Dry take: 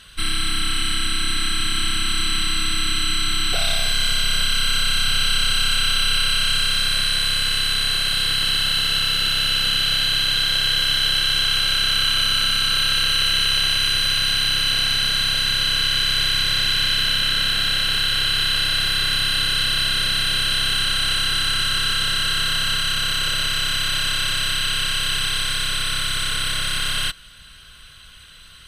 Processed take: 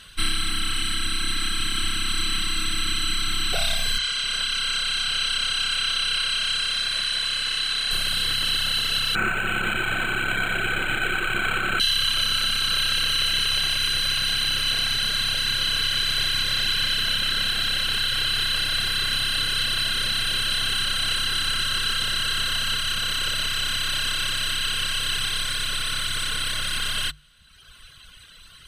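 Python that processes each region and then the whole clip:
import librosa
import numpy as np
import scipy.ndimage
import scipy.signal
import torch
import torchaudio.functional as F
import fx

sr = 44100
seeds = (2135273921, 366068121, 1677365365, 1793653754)

y = fx.chain(x, sr, fx.lowpass(hz=8500.0, slope=12),
    fx.low_shelf(hz=320.0, db=-11.0), at=(3.98, 7.91))
y = fx.chain(y, sr, fx.peak_eq(hz=190.0, db=6.0, octaves=1.6),
    fx.small_body(hz=(370.0, 730.0, 1300.0), ring_ms=35, db=13),
    fx.resample_linear(factor=8), at=(9.15, 11.8))
y = fx.dereverb_blind(y, sr, rt60_s=1.2)
y = fx.hum_notches(y, sr, base_hz=50, count=3)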